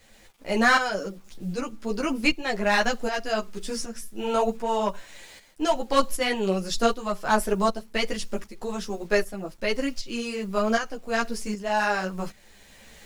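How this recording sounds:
a quantiser's noise floor 10 bits, dither none
tremolo saw up 1.3 Hz, depth 65%
a shimmering, thickened sound

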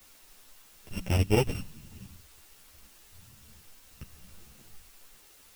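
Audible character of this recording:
a buzz of ramps at a fixed pitch in blocks of 16 samples
chopped level 11 Hz, depth 65%, duty 80%
a quantiser's noise floor 10 bits, dither triangular
a shimmering, thickened sound

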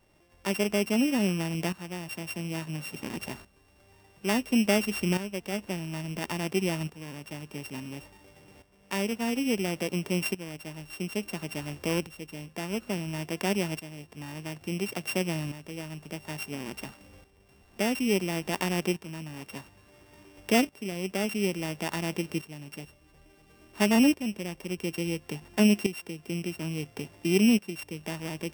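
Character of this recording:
a buzz of ramps at a fixed pitch in blocks of 16 samples
tremolo saw up 0.58 Hz, depth 75%

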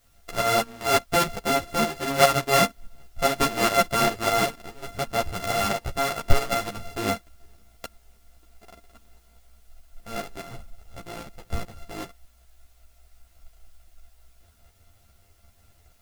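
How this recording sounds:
a buzz of ramps at a fixed pitch in blocks of 64 samples
tremolo saw up 4.9 Hz, depth 65%
a quantiser's noise floor 12 bits, dither triangular
a shimmering, thickened sound

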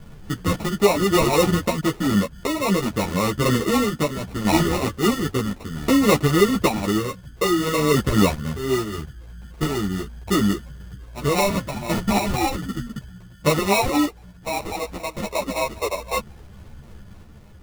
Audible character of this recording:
sample-and-hold tremolo 1.8 Hz
phaser sweep stages 6, 3.8 Hz, lowest notch 660–2,100 Hz
aliases and images of a low sample rate 1,600 Hz, jitter 0%
a shimmering, thickened sound

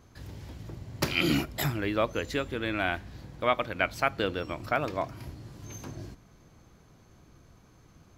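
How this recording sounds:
background noise floor −58 dBFS
spectral slope −3.5 dB per octave

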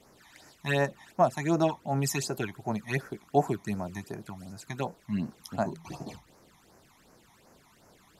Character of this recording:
phaser sweep stages 12, 2.7 Hz, lowest notch 460–3,500 Hz

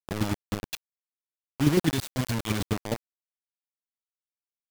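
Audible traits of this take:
phaser sweep stages 2, 0.77 Hz, lowest notch 400–1,300 Hz
chopped level 9.6 Hz, depth 60%, duty 20%
a quantiser's noise floor 6 bits, dither none

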